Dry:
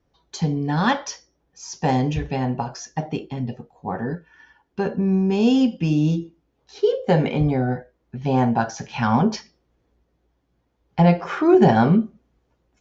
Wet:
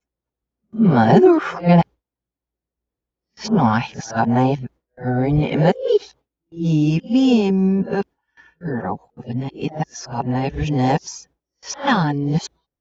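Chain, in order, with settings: whole clip reversed; gate with hold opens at -41 dBFS; gain +2.5 dB

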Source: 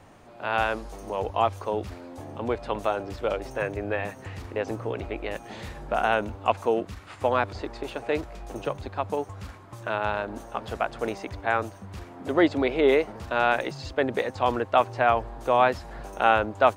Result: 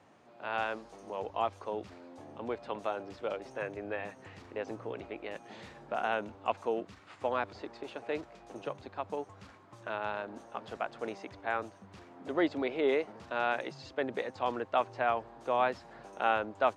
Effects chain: BPF 150–7100 Hz; gain -8.5 dB

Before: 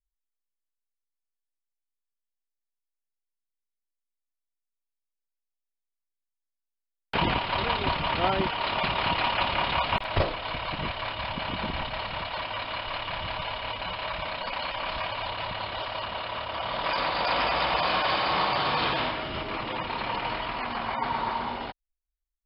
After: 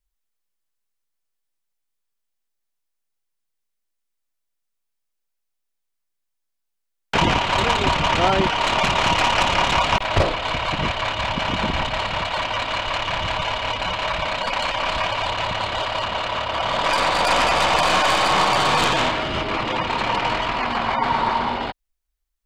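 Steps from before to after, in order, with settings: tracing distortion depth 0.082 ms; in parallel at -0.5 dB: limiter -19 dBFS, peak gain reduction 7 dB; on the sum: gain +3 dB

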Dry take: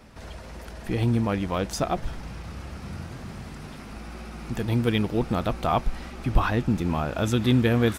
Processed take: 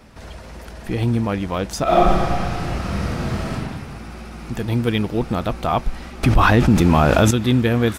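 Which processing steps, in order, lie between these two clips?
1.83–3.53 reverb throw, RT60 1.8 s, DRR -10.5 dB; 6.23–7.31 fast leveller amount 70%; gain +3.5 dB

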